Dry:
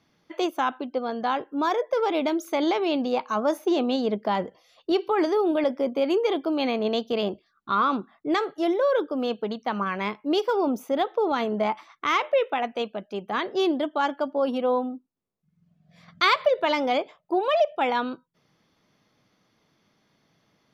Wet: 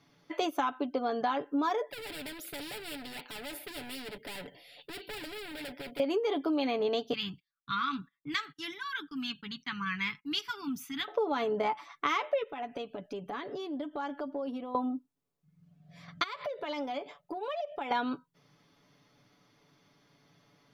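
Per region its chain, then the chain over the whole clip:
0:01.89–0:06.00: gain into a clipping stage and back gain 30 dB + phaser with its sweep stopped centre 2,700 Hz, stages 4 + every bin compressed towards the loudest bin 2 to 1
0:07.13–0:11.08: Chebyshev band-stop filter 160–1,900 Hz + noise gate −57 dBFS, range −22 dB
0:12.43–0:14.75: low-shelf EQ 230 Hz +8.5 dB + downward compressor 8 to 1, threshold −36 dBFS
0:16.23–0:17.91: downward compressor 12 to 1, threshold −34 dBFS + floating-point word with a short mantissa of 8 bits
whole clip: comb filter 7 ms, depth 59%; downward compressor, threshold −27 dBFS

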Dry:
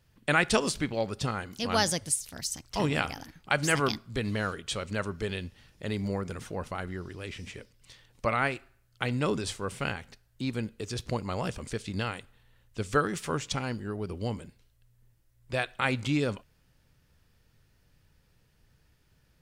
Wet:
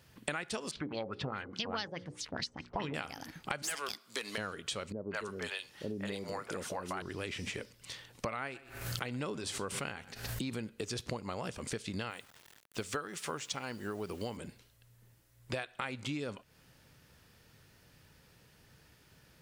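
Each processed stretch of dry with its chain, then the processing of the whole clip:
0:00.71–0:02.94: parametric band 670 Hz −4.5 dB 0.7 octaves + mains-hum notches 60/120/180/240/300/360/420/480/540 Hz + auto-filter low-pass sine 4.8 Hz 570–4,200 Hz
0:03.62–0:04.38: high-pass filter 420 Hz + high-shelf EQ 2,600 Hz +11 dB + tube saturation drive 19 dB, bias 0.5
0:04.92–0:07.02: low-shelf EQ 200 Hz −11.5 dB + three-band delay without the direct sound lows, mids, highs 190/220 ms, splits 530/2,500 Hz
0:08.42–0:10.70: single-tap delay 122 ms −23.5 dB + background raised ahead of every attack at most 67 dB per second
0:12.10–0:14.37: low-shelf EQ 370 Hz −6.5 dB + bit-depth reduction 10 bits, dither none
whole clip: high-pass filter 170 Hz 6 dB per octave; downward compressor 10 to 1, threshold −43 dBFS; level +8 dB

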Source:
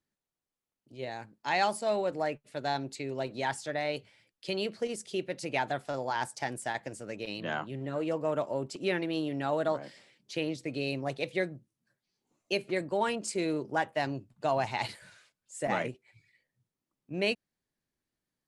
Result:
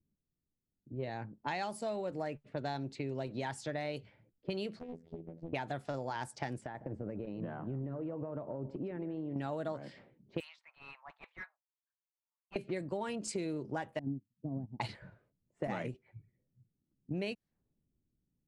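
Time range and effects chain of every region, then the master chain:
0:04.79–0:05.53: downward compressor 20 to 1, threshold −41 dBFS + phases set to zero 82.6 Hz + highs frequency-modulated by the lows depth 0.81 ms
0:06.60–0:09.36: downward compressor 12 to 1, threshold −39 dBFS + single-tap delay 154 ms −16 dB
0:10.40–0:12.56: Butterworth high-pass 930 Hz 48 dB per octave + hard clipping −37.5 dBFS
0:13.99–0:14.80: low-pass with resonance 250 Hz, resonance Q 2.8 + expander for the loud parts 2.5 to 1, over −48 dBFS
whole clip: low-pass that shuts in the quiet parts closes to 320 Hz, open at −30 dBFS; low-shelf EQ 280 Hz +10.5 dB; downward compressor 6 to 1, threshold −37 dBFS; level +2 dB

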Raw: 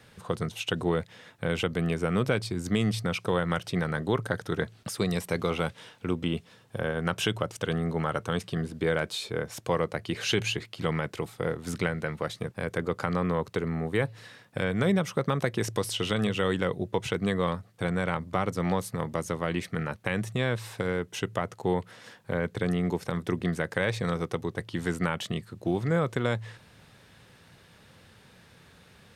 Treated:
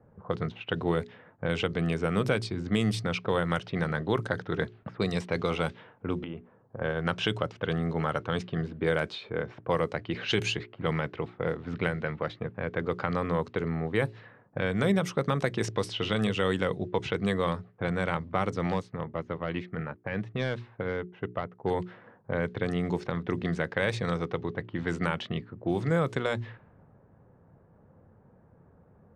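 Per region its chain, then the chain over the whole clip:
0:06.21–0:06.81: bass and treble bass −3 dB, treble −9 dB + downward compressor, threshold −32 dBFS
0:18.67–0:21.71: hard clipping −18.5 dBFS + expander for the loud parts, over −45 dBFS
whole clip: low-pass that shuts in the quiet parts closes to 820 Hz, open at −22 dBFS; mains-hum notches 60/120/180/240/300/360/420 Hz; low-pass that shuts in the quiet parts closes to 1,200 Hz, open at −22.5 dBFS

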